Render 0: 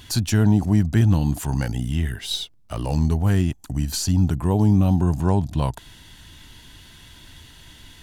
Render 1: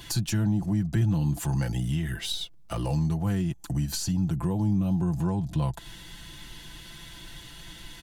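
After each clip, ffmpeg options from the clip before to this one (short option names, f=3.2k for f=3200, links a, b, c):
-filter_complex "[0:a]asplit=2[a][b];[b]acompressor=threshold=-27dB:ratio=6,volume=0dB[c];[a][c]amix=inputs=2:normalize=0,aecho=1:1:5.9:0.71,acrossover=split=150[d][e];[e]acompressor=threshold=-25dB:ratio=3[f];[d][f]amix=inputs=2:normalize=0,volume=-6dB"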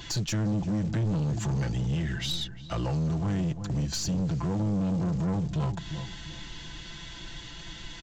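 -filter_complex "[0:a]aresample=16000,acrusher=bits=6:mode=log:mix=0:aa=0.000001,aresample=44100,asplit=2[a][b];[b]adelay=352,lowpass=f=1.2k:p=1,volume=-12dB,asplit=2[c][d];[d]adelay=352,lowpass=f=1.2k:p=1,volume=0.33,asplit=2[e][f];[f]adelay=352,lowpass=f=1.2k:p=1,volume=0.33[g];[a][c][e][g]amix=inputs=4:normalize=0,asoftclip=type=tanh:threshold=-26.5dB,volume=2.5dB"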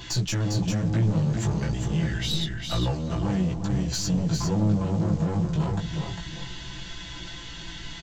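-af "flanger=delay=16:depth=3.2:speed=0.3,aecho=1:1:402:0.562,volume=5.5dB"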